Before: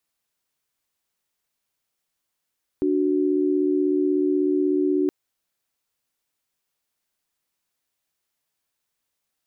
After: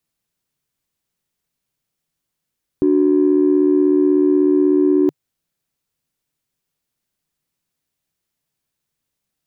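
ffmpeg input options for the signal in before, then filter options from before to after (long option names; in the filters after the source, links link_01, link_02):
-f lavfi -i "aevalsrc='0.0891*(sin(2*PI*293.66*t)+sin(2*PI*369.99*t))':duration=2.27:sample_rate=44100"
-filter_complex "[0:a]equalizer=frequency=150:width=2.9:gain=6,asplit=2[link_01][link_02];[link_02]adynamicsmooth=sensitivity=0.5:basefreq=530,volume=2.5dB[link_03];[link_01][link_03]amix=inputs=2:normalize=0"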